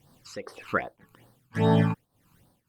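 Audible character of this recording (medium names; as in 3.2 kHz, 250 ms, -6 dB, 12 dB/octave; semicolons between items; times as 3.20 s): a quantiser's noise floor 12-bit, dither triangular; tremolo triangle 1.8 Hz, depth 90%; phasing stages 12, 2.5 Hz, lowest notch 570–2500 Hz; Opus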